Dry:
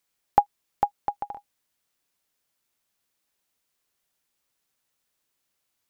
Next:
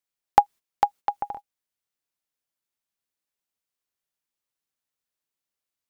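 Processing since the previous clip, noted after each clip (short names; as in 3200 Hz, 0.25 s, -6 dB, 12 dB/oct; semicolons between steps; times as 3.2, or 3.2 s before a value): gate -41 dBFS, range -14 dB; gain +3 dB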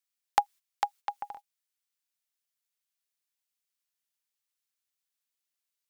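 tilt shelf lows -9 dB, about 910 Hz; gain -7.5 dB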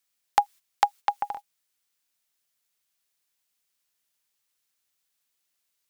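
limiter -11.5 dBFS, peak gain reduction 6.5 dB; gain +9 dB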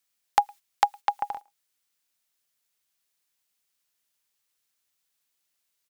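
speakerphone echo 0.11 s, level -28 dB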